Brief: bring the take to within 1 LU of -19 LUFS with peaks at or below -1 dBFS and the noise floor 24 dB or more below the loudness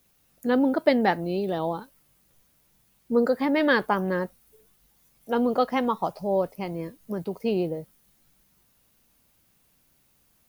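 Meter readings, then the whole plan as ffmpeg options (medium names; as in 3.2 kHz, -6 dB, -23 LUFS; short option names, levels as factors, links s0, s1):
loudness -26.0 LUFS; peak level -6.5 dBFS; loudness target -19.0 LUFS
-> -af "volume=2.24,alimiter=limit=0.891:level=0:latency=1"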